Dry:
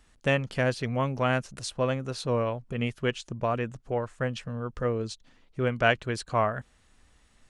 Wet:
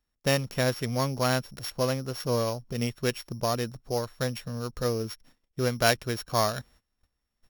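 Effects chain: sample sorter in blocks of 8 samples; gate -55 dBFS, range -20 dB

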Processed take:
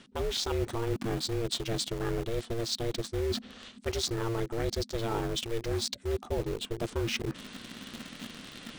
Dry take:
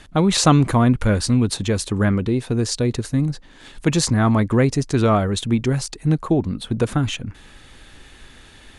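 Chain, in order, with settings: formant shift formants -2 st; bell 4200 Hz +9 dB 0.89 oct; reverse; compressor 6:1, threshold -31 dBFS, peak gain reduction 21 dB; reverse; ring modulator 230 Hz; bell 390 Hz +3.5 dB 0.21 oct; in parallel at -6.5 dB: requantised 6-bit, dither none

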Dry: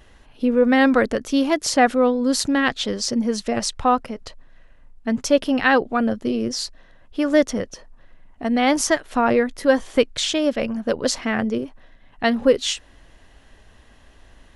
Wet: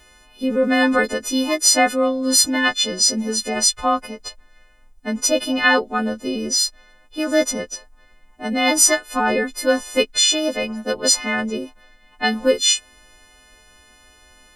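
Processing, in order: frequency quantiser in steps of 3 st; bell 110 Hz -8.5 dB 0.86 oct; gain -1 dB

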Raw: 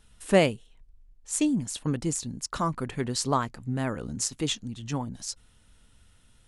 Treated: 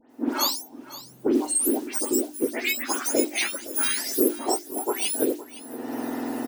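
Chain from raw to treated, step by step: spectrum mirrored in octaves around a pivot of 1600 Hz; recorder AGC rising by 46 dB/s; notches 50/100/150/200/250/300/350/400 Hz; companded quantiser 6-bit; dispersion highs, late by 0.103 s, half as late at 2800 Hz; on a send: echo 0.514 s -16.5 dB; on the sum: gain +1.5 dB

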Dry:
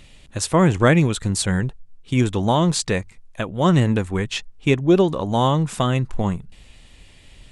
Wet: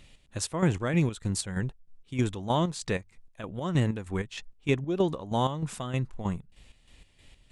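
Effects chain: chopper 3.2 Hz, depth 60%, duty 50%; gain -7.5 dB

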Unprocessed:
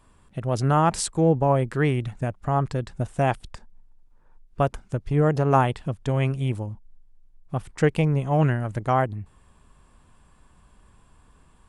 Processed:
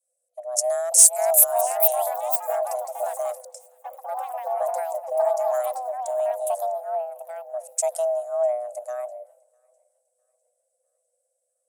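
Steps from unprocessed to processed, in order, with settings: EQ curve 240 Hz 0 dB, 470 Hz -21 dB, 2900 Hz -19 dB, 6400 Hz +13 dB; echoes that change speed 0.636 s, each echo +5 st, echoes 3; in parallel at -2 dB: compressor, threshold -32 dBFS, peak gain reduction 18 dB; on the sum: soft clip -8.5 dBFS, distortion -24 dB; frequency shift +490 Hz; on a send: thinning echo 0.652 s, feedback 55%, high-pass 360 Hz, level -18 dB; on the sum: three-band expander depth 100%; gain -3.5 dB

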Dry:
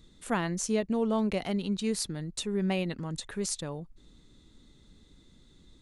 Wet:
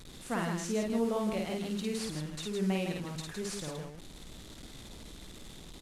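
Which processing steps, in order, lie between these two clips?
delta modulation 64 kbps, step -39 dBFS; loudspeakers at several distances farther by 18 m -2 dB, 55 m -5 dB; gain -5.5 dB

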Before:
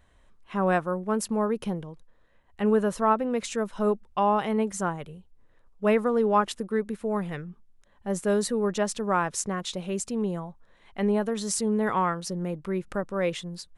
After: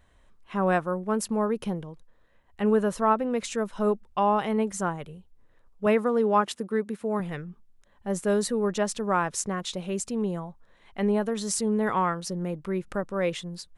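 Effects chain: 5.86–7.2 HPF 110 Hz

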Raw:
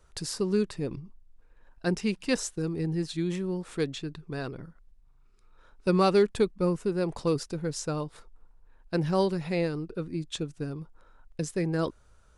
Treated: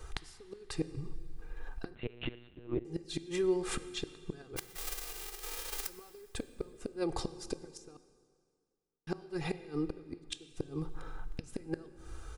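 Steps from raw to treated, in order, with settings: 4.56–5.88 spectral whitening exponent 0.1; comb 2.5 ms, depth 79%; compressor 12:1, threshold -38 dBFS, peak gain reduction 24 dB; flipped gate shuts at -33 dBFS, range -25 dB; 7.97–9.07 mute; plate-style reverb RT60 2 s, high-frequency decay 0.9×, DRR 13 dB; 1.95–2.85 monotone LPC vocoder at 8 kHz 120 Hz; gain +10.5 dB

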